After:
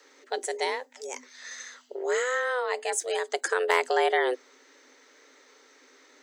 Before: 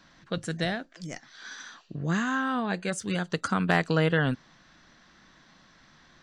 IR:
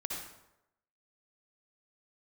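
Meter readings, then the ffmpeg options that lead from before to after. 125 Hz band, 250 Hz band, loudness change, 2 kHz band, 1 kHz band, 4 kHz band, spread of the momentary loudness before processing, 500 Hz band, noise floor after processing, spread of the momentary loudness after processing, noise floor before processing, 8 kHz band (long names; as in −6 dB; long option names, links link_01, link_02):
below −40 dB, −15.5 dB, 0.0 dB, +1.0 dB, +3.0 dB, +1.0 dB, 17 LU, +5.0 dB, −58 dBFS, 16 LU, −59 dBFS, +7.5 dB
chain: -af "aexciter=amount=2.6:drive=5.6:freq=6000,afreqshift=250"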